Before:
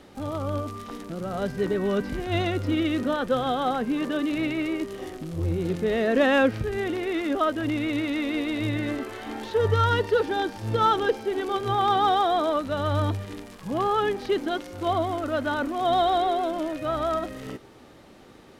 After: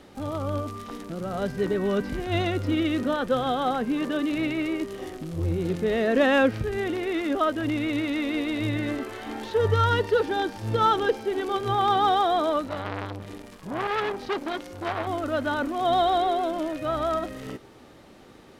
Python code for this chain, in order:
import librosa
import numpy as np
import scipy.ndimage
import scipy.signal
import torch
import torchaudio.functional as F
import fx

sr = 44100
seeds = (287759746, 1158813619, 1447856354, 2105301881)

y = fx.transformer_sat(x, sr, knee_hz=1600.0, at=(12.65, 15.07))